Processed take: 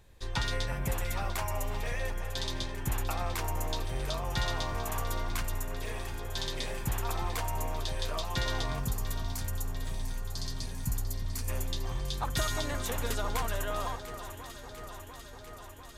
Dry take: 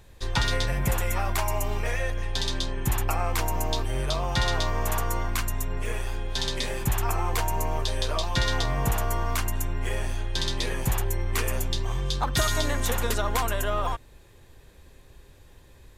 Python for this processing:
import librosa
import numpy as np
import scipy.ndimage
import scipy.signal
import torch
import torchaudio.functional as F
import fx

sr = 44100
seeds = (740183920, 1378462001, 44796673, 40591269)

p1 = fx.spec_box(x, sr, start_s=8.79, length_s=2.7, low_hz=290.0, high_hz=4100.0, gain_db=-13)
p2 = p1 + fx.echo_alternate(p1, sr, ms=348, hz=1700.0, feedback_pct=85, wet_db=-10, dry=0)
y = p2 * librosa.db_to_amplitude(-7.0)